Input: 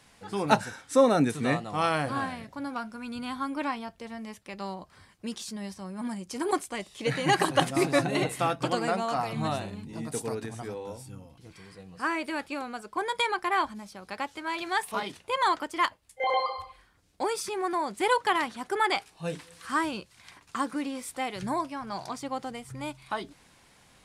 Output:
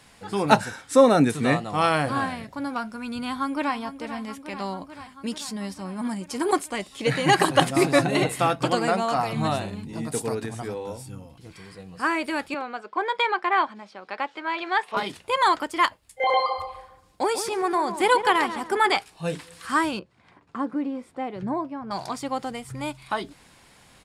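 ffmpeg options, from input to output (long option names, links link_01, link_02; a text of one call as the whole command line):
ffmpeg -i in.wav -filter_complex "[0:a]asplit=2[link_01][link_02];[link_02]afade=type=in:start_time=3.24:duration=0.01,afade=type=out:start_time=3.75:duration=0.01,aecho=0:1:440|880|1320|1760|2200|2640|3080|3520|3960|4400|4840|5280:0.266073|0.199554|0.149666|0.112249|0.084187|0.0631403|0.0473552|0.0355164|0.0266373|0.019978|0.0149835|0.0112376[link_03];[link_01][link_03]amix=inputs=2:normalize=0,asettb=1/sr,asplit=3[link_04][link_05][link_06];[link_04]atrim=end=12.544[link_07];[link_05]atrim=start=12.54:end=14.97,asetpts=PTS-STARTPTS,afade=type=in:duration=0.004:curve=qsin,afade=type=out:start_time=2.426:duration=0.004:curve=qsin,highpass=330,lowpass=3300[link_08];[link_06]atrim=start=14.966[link_09];[link_07][link_08]acrossfade=duration=0.004:curve1=hsin:curve2=qsin[link_10];[link_10][link_09]acrossfade=duration=0.004:curve1=qsin:curve2=hsin,asplit=3[link_11][link_12][link_13];[link_11]afade=type=out:start_time=16.5:duration=0.02[link_14];[link_12]asplit=2[link_15][link_16];[link_16]adelay=142,lowpass=frequency=1500:poles=1,volume=-9dB,asplit=2[link_17][link_18];[link_18]adelay=142,lowpass=frequency=1500:poles=1,volume=0.4,asplit=2[link_19][link_20];[link_20]adelay=142,lowpass=frequency=1500:poles=1,volume=0.4,asplit=2[link_21][link_22];[link_22]adelay=142,lowpass=frequency=1500:poles=1,volume=0.4[link_23];[link_15][link_17][link_19][link_21][link_23]amix=inputs=5:normalize=0,afade=type=in:start_time=16.5:duration=0.02,afade=type=out:start_time=18.96:duration=0.02[link_24];[link_13]afade=type=in:start_time=18.96:duration=0.02[link_25];[link_14][link_24][link_25]amix=inputs=3:normalize=0,asettb=1/sr,asplit=3[link_26][link_27][link_28];[link_26]atrim=end=19.994[link_29];[link_27]atrim=start=19.99:end=21.91,asetpts=PTS-STARTPTS,afade=type=in:duration=0.004:curve=qsin,afade=type=out:start_time=1.916:duration=0.004:curve=qsin,bandpass=frequency=290:width_type=q:width=0.54[link_30];[link_28]atrim=start=21.906[link_31];[link_29][link_30]acrossfade=duration=0.004:curve1=hsin:curve2=qsin[link_32];[link_32][link_31]acrossfade=duration=0.004:curve1=qsin:curve2=hsin,bandreject=frequency=6000:width=18,volume=5dB" out.wav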